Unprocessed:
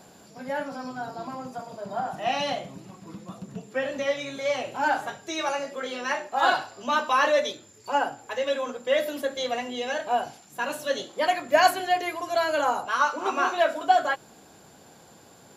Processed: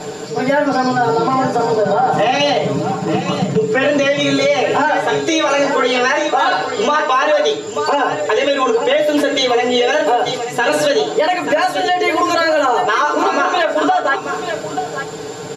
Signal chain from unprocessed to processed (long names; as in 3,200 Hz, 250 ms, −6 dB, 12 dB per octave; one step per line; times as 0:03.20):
low-pass filter 7,200 Hz 12 dB per octave
parametric band 430 Hz +14.5 dB 0.21 octaves
mains-hum notches 60/120/180/240/300/360/420/480 Hz
comb filter 6.6 ms, depth 94%
downward compressor 16 to 1, threshold −27 dBFS, peak gain reduction 19.5 dB
hard clipping −19.5 dBFS, distortion −46 dB
single-tap delay 886 ms −11.5 dB
boost into a limiter +24.5 dB
level −5 dB